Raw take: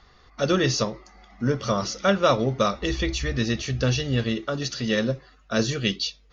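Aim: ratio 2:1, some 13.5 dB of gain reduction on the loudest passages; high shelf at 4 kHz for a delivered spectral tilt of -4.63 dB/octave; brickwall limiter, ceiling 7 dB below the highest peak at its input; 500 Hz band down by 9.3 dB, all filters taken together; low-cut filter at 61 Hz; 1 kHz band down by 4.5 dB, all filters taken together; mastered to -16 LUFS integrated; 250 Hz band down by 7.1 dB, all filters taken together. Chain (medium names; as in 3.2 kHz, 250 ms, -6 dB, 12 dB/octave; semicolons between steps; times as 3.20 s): high-pass 61 Hz; peaking EQ 250 Hz -7 dB; peaking EQ 500 Hz -8.5 dB; peaking EQ 1 kHz -3 dB; treble shelf 4 kHz -8.5 dB; compression 2:1, threshold -48 dBFS; trim +27.5 dB; peak limiter -5.5 dBFS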